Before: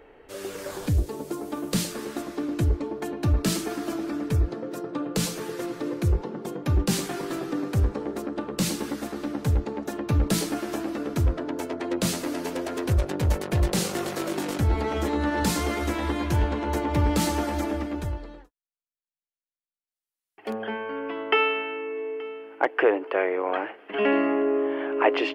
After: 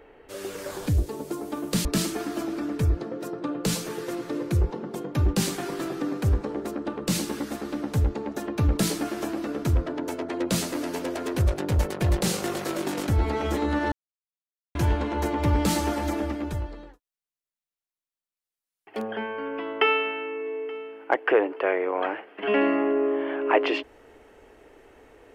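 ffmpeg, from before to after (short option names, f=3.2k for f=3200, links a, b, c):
-filter_complex "[0:a]asplit=4[a][b][c][d];[a]atrim=end=1.852[e];[b]atrim=start=3.358:end=15.43,asetpts=PTS-STARTPTS,afade=t=out:st=12.068:d=0.004:c=hsin[f];[c]atrim=start=15.43:end=16.26,asetpts=PTS-STARTPTS,volume=0[g];[d]atrim=start=16.26,asetpts=PTS-STARTPTS,afade=t=in:d=0.004:c=hsin[h];[f][g][h]concat=n=3:v=0:a=1[i];[e][i]acrossfade=d=0.004:c1=hsin:c2=hsin"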